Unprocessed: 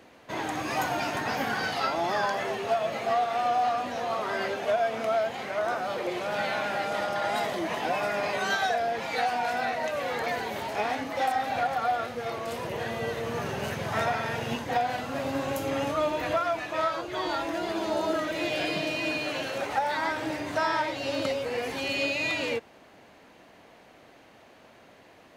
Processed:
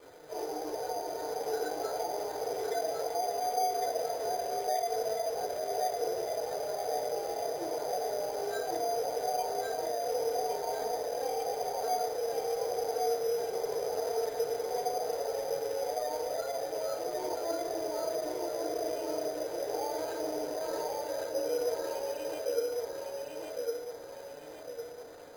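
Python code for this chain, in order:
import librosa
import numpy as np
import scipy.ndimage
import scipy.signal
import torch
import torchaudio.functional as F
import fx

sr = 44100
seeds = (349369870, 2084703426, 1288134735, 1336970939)

p1 = scipy.ndimage.median_filter(x, 41, mode='constant')
p2 = scipy.signal.sosfilt(scipy.signal.ellip(4, 1.0, 50, 410.0, 'highpass', fs=sr, output='sos'), p1)
p3 = fx.spec_gate(p2, sr, threshold_db=-15, keep='strong')
p4 = fx.peak_eq(p3, sr, hz=1400.0, db=-13.0, octaves=1.7)
p5 = fx.over_compress(p4, sr, threshold_db=-47.0, ratio=-1.0)
p6 = p4 + (p5 * 10.0 ** (-1.5 / 20.0))
p7 = fx.quant_companded(p6, sr, bits=4)
p8 = np.clip(10.0 ** (32.5 / 20.0) * p7, -1.0, 1.0) / 10.0 ** (32.5 / 20.0)
p9 = fx.echo_feedback(p8, sr, ms=1107, feedback_pct=43, wet_db=-3.0)
p10 = fx.rev_fdn(p9, sr, rt60_s=0.45, lf_ratio=1.05, hf_ratio=0.3, size_ms=20.0, drr_db=-5.0)
p11 = np.repeat(scipy.signal.resample_poly(p10, 1, 8), 8)[:len(p10)]
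y = p11 * 10.0 ** (-4.5 / 20.0)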